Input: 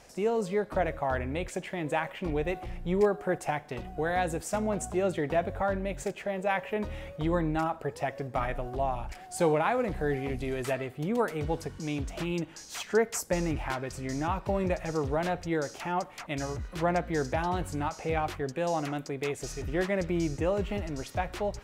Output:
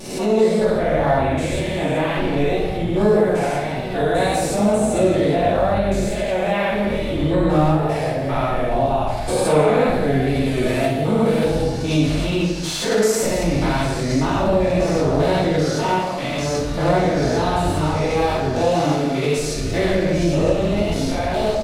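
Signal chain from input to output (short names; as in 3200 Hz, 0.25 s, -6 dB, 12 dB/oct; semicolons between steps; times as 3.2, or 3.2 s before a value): stepped spectrum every 0.2 s; in parallel at -3 dB: limiter -29.5 dBFS, peak gain reduction 11 dB; on the sum: wow and flutter 81 cents; fifteen-band EQ 630 Hz +5 dB, 4000 Hz +10 dB, 10000 Hz +7 dB; outdoor echo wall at 28 m, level -11 dB; shoebox room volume 220 m³, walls mixed, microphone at 2.5 m; backwards sustainer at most 73 dB/s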